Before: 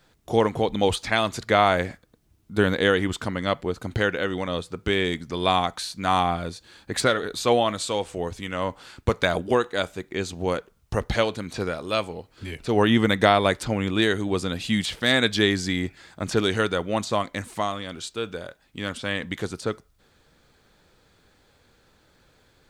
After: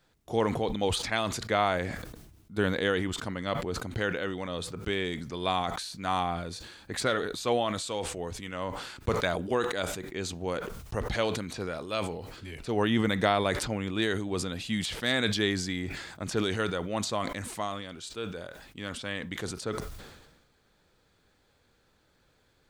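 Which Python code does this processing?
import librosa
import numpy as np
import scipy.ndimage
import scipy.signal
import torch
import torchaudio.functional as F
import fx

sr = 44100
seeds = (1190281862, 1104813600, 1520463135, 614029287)

y = fx.sustainer(x, sr, db_per_s=47.0)
y = F.gain(torch.from_numpy(y), -7.5).numpy()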